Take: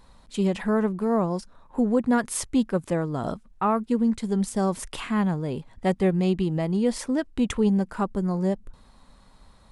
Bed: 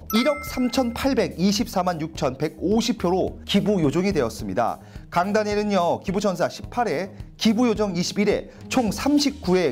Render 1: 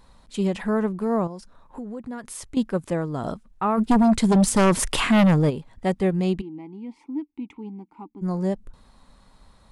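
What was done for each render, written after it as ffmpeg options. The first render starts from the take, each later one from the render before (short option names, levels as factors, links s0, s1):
-filter_complex "[0:a]asettb=1/sr,asplit=3[s0][s1][s2];[s0]atrim=end=1.274[s3];[s1]atrim=start=1.27:end=2.57,asetpts=PTS-STARTPTS,afade=t=in:d=0.004:c=qsin,afade=t=out:st=1.296:d=0.004:c=qsin,acompressor=threshold=0.0178:ratio=3:attack=3.2:release=140:knee=1:detection=peak[s4];[s2]atrim=start=2.566[s5];[s3][s4]acrossfade=d=0.004:c1=hsin:c2=qsin[s6];[s6][s5]acrossfade=d=0.004:c1=qsin:c2=hsin,asplit=3[s7][s8][s9];[s7]afade=t=out:st=3.77:d=0.02[s10];[s8]aeval=exprs='0.224*sin(PI/2*2.51*val(0)/0.224)':c=same,afade=t=in:st=3.77:d=0.02,afade=t=out:st=5.49:d=0.02[s11];[s9]afade=t=in:st=5.49:d=0.02[s12];[s10][s11][s12]amix=inputs=3:normalize=0,asplit=3[s13][s14][s15];[s13]afade=t=out:st=6.4:d=0.02[s16];[s14]asplit=3[s17][s18][s19];[s17]bandpass=f=300:t=q:w=8,volume=1[s20];[s18]bandpass=f=870:t=q:w=8,volume=0.501[s21];[s19]bandpass=f=2240:t=q:w=8,volume=0.355[s22];[s20][s21][s22]amix=inputs=3:normalize=0,afade=t=in:st=6.4:d=0.02,afade=t=out:st=8.21:d=0.02[s23];[s15]afade=t=in:st=8.21:d=0.02[s24];[s16][s23][s24]amix=inputs=3:normalize=0"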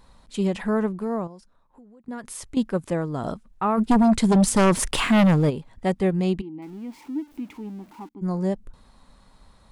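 -filter_complex "[0:a]asettb=1/sr,asplit=3[s0][s1][s2];[s0]atrim=end=4.764[s3];[s1]atrim=start=4.76:end=5.48,asetpts=PTS-STARTPTS,afade=t=in:d=0.004:c=qsin,afade=t=out:st=0.716:d=0.004:c=qsin,aeval=exprs='sgn(val(0))*max(abs(val(0))-0.00531,0)':c=same[s4];[s2]atrim=start=5.476[s5];[s3][s4]acrossfade=d=0.004:c1=hsin:c2=qsin[s6];[s6][s5]acrossfade=d=0.004:c1=qsin:c2=hsin,asettb=1/sr,asplit=3[s7][s8][s9];[s7]atrim=end=6.624[s10];[s8]atrim=start=6.62:end=8.09,asetpts=PTS-STARTPTS,afade=t=in:d=0.004:c=qsin,afade=t=out:st=1.466:d=0.004:c=qsin,aeval=exprs='val(0)+0.5*0.00447*sgn(val(0))':c=same[s11];[s9]atrim=start=8.086[s12];[s10][s11]acrossfade=d=0.004:c1=hsin:c2=qsin[s13];[s13][s12]acrossfade=d=0.004:c1=qsin:c2=hsin,asplit=2[s14][s15];[s14]atrim=end=2.08,asetpts=PTS-STARTPTS,afade=t=out:st=0.83:d=1.25:c=qua:silence=0.133352[s16];[s15]atrim=start=2.08,asetpts=PTS-STARTPTS,afade=t=in:d=0.004:c=hsin:silence=0.133352[s17];[s16][s17]concat=n=2:v=0:a=1"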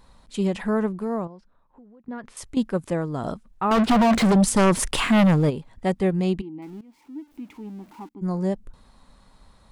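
-filter_complex "[0:a]asettb=1/sr,asplit=3[s0][s1][s2];[s0]atrim=end=1.254[s3];[s1]atrim=start=1.25:end=2.37,asetpts=PTS-STARTPTS,afade=t=in:d=0.004:c=qsin,afade=t=out:st=1.116:d=0.004:c=qsin,lowpass=3000[s4];[s2]atrim=start=2.366[s5];[s3][s4]acrossfade=d=0.004:c1=hsin:c2=qsin[s6];[s6][s5]acrossfade=d=0.004:c1=qsin:c2=hsin,asettb=1/sr,asplit=3[s7][s8][s9];[s7]atrim=end=3.714[s10];[s8]atrim=start=3.71:end=4.32,asetpts=PTS-STARTPTS,afade=t=in:d=0.004:c=qsin,afade=t=out:st=0.606:d=0.004:c=qsin,asplit=2[s11][s12];[s12]highpass=f=720:p=1,volume=63.1,asoftclip=type=tanh:threshold=0.237[s13];[s11][s13]amix=inputs=2:normalize=0,lowpass=f=1900:p=1,volume=0.501[s14];[s9]atrim=start=4.316[s15];[s10][s14]acrossfade=d=0.004:c1=hsin:c2=qsin[s16];[s16][s15]acrossfade=d=0.004:c1=qsin:c2=hsin,asplit=2[s17][s18];[s17]atrim=end=6.81,asetpts=PTS-STARTPTS,afade=t=out:st=6.806:d=0.004:c=hsin:silence=0.125893[s19];[s18]atrim=start=6.81,asetpts=PTS-STARTPTS,afade=t=in:d=1.08:silence=0.125893[s20];[s19][s20]concat=n=2:v=0:a=1"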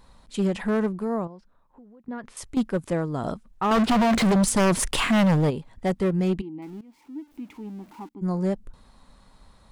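-af "asoftclip=type=hard:threshold=0.141"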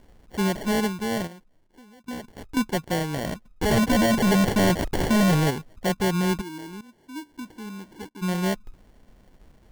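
-af "acrusher=samples=35:mix=1:aa=0.000001"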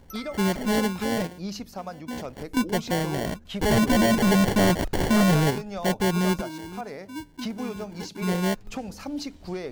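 -filter_complex "[1:a]volume=0.211[s0];[0:a][s0]amix=inputs=2:normalize=0"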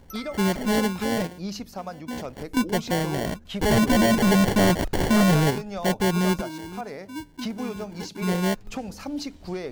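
-af "volume=1.12"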